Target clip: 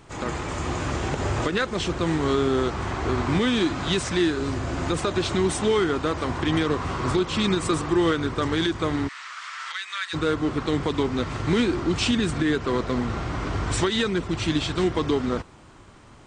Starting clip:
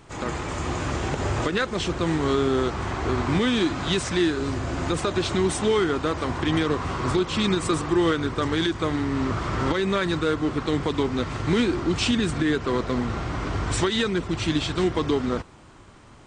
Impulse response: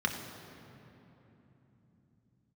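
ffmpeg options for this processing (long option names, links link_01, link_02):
-filter_complex "[0:a]asplit=3[link_01][link_02][link_03];[link_01]afade=type=out:start_time=9.07:duration=0.02[link_04];[link_02]highpass=frequency=1400:width=0.5412,highpass=frequency=1400:width=1.3066,afade=type=in:start_time=9.07:duration=0.02,afade=type=out:start_time=10.13:duration=0.02[link_05];[link_03]afade=type=in:start_time=10.13:duration=0.02[link_06];[link_04][link_05][link_06]amix=inputs=3:normalize=0"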